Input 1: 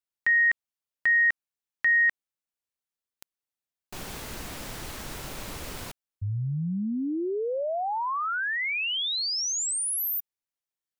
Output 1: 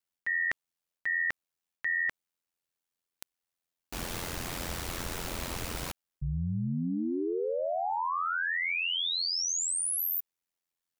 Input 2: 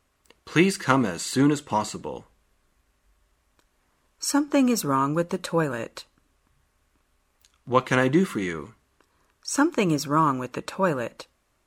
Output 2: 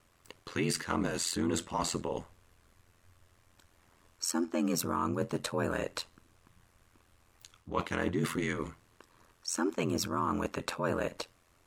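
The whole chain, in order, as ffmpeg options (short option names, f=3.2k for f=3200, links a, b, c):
-af "areverse,acompressor=threshold=-33dB:ratio=5:attack=8.3:release=103:knee=6:detection=rms,areverse,aeval=exprs='val(0)*sin(2*PI*43*n/s)':c=same,volume=6dB"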